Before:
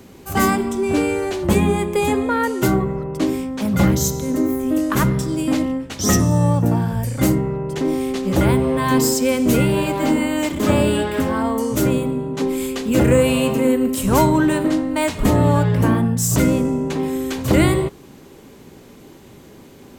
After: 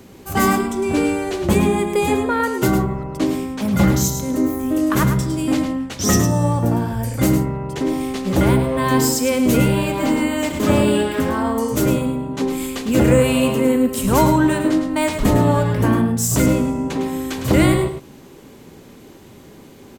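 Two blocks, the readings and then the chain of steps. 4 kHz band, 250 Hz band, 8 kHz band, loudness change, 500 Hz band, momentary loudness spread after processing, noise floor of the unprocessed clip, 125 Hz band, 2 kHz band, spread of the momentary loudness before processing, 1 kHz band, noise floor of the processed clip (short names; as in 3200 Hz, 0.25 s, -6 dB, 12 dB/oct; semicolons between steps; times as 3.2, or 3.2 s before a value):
+0.5 dB, +0.5 dB, +0.5 dB, +0.5 dB, 0.0 dB, 7 LU, -44 dBFS, 0.0 dB, +0.5 dB, 6 LU, +1.0 dB, -43 dBFS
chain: echo 0.106 s -8 dB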